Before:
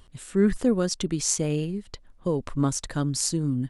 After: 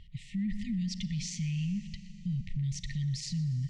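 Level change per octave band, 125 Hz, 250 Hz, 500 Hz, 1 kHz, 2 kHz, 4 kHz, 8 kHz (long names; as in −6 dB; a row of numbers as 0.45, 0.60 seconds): −3.0 dB, −9.0 dB, below −40 dB, below −40 dB, −8.5 dB, −8.0 dB, −15.5 dB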